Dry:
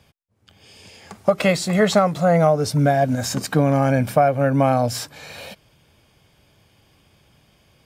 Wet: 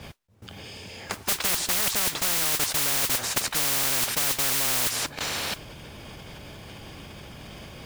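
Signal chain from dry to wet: bass shelf 150 Hz +4 dB; level held to a coarse grid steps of 20 dB; modulation noise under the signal 14 dB; treble shelf 7.3 kHz -9 dB; spectrum-flattening compressor 10:1

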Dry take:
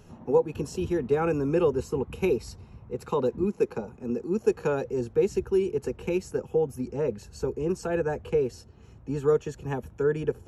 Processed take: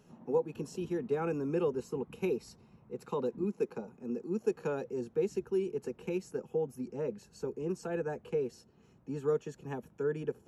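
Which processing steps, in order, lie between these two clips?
resonant low shelf 120 Hz -11 dB, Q 1.5; trim -8.5 dB

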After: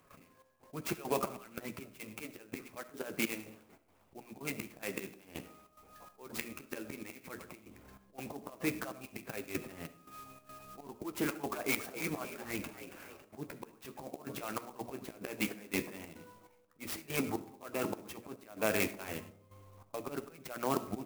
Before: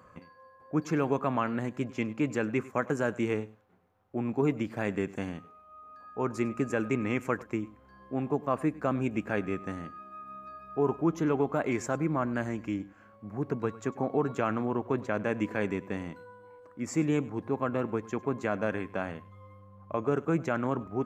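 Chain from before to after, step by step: treble shelf 2.5 kHz -9.5 dB; hum notches 60/120/180/240/300/360/420/480/540 Hz; harmonic-percussive split harmonic -16 dB; high-order bell 3.6 kHz +13.5 dB; compression 2.5:1, threshold -34 dBFS, peak gain reduction 7 dB; slow attack 335 ms; flange 0.1 Hz, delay 7 ms, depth 8.5 ms, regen -41%; trance gate ".xxx..xxx" 143 bpm -12 dB; 11.25–13.25 s: frequency-shifting echo 277 ms, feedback 52%, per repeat +71 Hz, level -11 dB; reverberation RT60 0.60 s, pre-delay 20 ms, DRR 13.5 dB; sampling jitter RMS 0.051 ms; trim +14.5 dB

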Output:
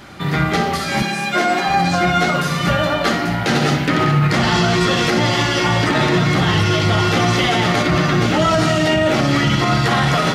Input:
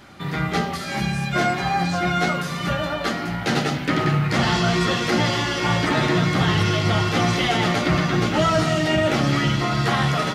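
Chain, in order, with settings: flutter echo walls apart 10.4 m, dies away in 0.35 s; peak limiter -14 dBFS, peak gain reduction 6 dB; 1.02–1.69 s: high-pass 210 Hz 24 dB/octave; trim +7 dB

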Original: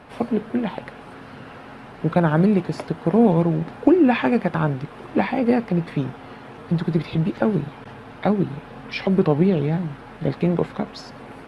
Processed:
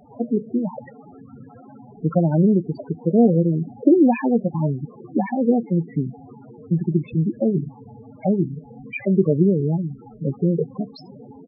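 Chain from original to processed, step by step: echo from a far wall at 280 m, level -30 dB; loudest bins only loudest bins 8; trim +1 dB

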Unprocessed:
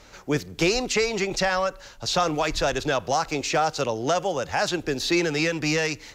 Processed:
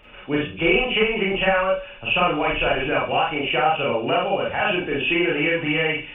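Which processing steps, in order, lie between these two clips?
knee-point frequency compression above 2.2 kHz 4:1; Schroeder reverb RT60 0.31 s, combs from 30 ms, DRR -4 dB; trim -2.5 dB

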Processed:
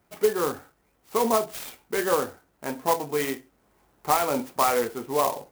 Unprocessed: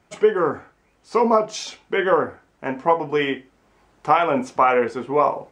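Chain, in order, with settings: sampling jitter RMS 0.061 ms; trim -5.5 dB

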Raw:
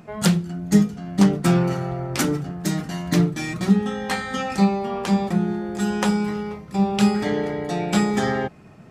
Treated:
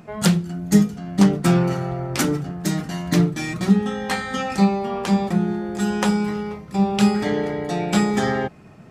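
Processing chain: 0.45–0.99 s: treble shelf 8.7 kHz +5.5 dB; trim +1 dB

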